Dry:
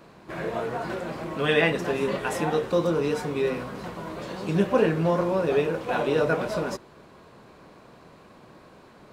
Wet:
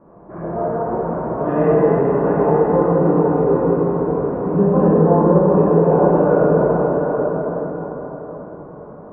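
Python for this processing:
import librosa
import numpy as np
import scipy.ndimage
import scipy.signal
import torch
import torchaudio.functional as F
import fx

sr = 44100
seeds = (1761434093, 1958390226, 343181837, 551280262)

p1 = scipy.signal.sosfilt(scipy.signal.butter(4, 1100.0, 'lowpass', fs=sr, output='sos'), x)
p2 = p1 + fx.echo_single(p1, sr, ms=772, db=-7.5, dry=0)
y = fx.rev_plate(p2, sr, seeds[0], rt60_s=4.7, hf_ratio=0.6, predelay_ms=0, drr_db=-9.0)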